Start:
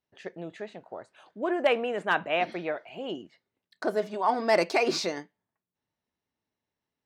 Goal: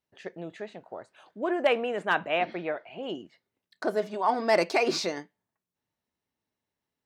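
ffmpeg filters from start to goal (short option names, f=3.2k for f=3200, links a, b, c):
-filter_complex "[0:a]asettb=1/sr,asplit=3[a][b][c];[a]atrim=end=2.384[d];[b]atrim=start=2.38:end=3.03,asetpts=PTS-STARTPTS,afade=t=in:d=0.004:c=qsin,afade=t=out:st=0.646:d=0.004:c=qsin,lowpass=3.7k[e];[c]atrim=start=3.026[f];[d][e]acrossfade=d=0.004:c1=hsin:c2=qsin[g];[g][f]acrossfade=d=0.004:c1=qsin:c2=hsin"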